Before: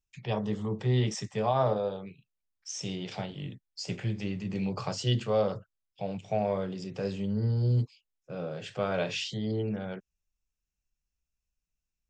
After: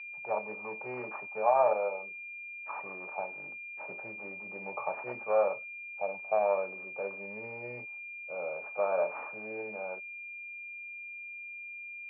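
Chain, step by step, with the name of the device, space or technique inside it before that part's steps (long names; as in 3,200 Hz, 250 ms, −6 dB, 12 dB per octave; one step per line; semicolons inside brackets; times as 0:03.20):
toy sound module (linearly interpolated sample-rate reduction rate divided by 6×; switching amplifier with a slow clock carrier 2,400 Hz; loudspeaker in its box 580–3,600 Hz, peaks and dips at 590 Hz +8 dB, 870 Hz +10 dB, 1,200 Hz +6 dB, 2,100 Hz −4 dB, 3,400 Hz −9 dB)
level −1.5 dB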